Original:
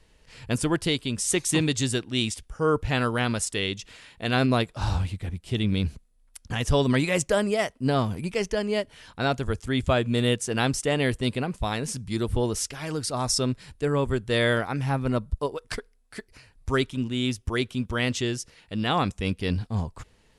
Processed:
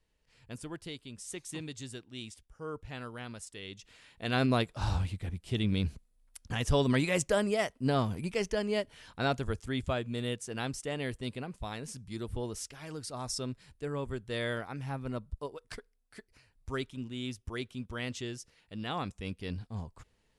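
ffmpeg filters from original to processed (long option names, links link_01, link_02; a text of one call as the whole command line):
ffmpeg -i in.wav -af "volume=-5dB,afade=type=in:start_time=3.62:duration=0.86:silence=0.237137,afade=type=out:start_time=9.31:duration=0.76:silence=0.473151" out.wav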